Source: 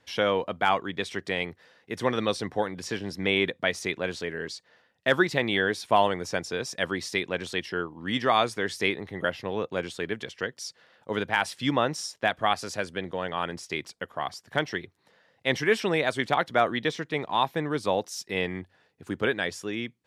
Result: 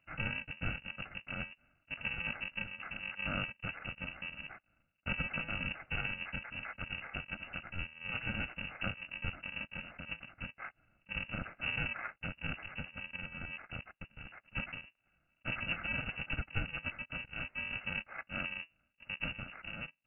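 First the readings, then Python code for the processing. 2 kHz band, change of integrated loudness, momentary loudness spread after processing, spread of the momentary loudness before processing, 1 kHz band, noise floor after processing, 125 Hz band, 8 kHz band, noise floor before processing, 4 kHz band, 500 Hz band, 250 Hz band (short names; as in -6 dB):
-8.5 dB, -11.5 dB, 9 LU, 10 LU, -20.0 dB, -78 dBFS, -7.0 dB, under -40 dB, -68 dBFS, -13.0 dB, -25.0 dB, -15.5 dB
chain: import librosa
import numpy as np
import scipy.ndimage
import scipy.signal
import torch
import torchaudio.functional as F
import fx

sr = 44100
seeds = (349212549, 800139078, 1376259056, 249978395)

y = fx.bit_reversed(x, sr, seeds[0], block=128)
y = fx.freq_invert(y, sr, carrier_hz=2800)
y = F.gain(torch.from_numpy(y), -2.0).numpy()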